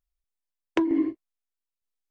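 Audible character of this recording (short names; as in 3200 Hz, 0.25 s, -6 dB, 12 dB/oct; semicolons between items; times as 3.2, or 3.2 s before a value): tremolo saw down 1.1 Hz, depth 55%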